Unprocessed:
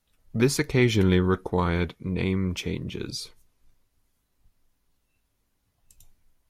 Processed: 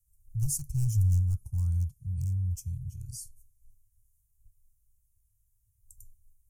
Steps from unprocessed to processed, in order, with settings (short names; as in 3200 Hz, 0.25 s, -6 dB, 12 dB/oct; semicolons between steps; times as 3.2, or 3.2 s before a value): one-sided fold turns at -19.5 dBFS; inverse Chebyshev band-stop 220–4000 Hz, stop band 40 dB; gain +3 dB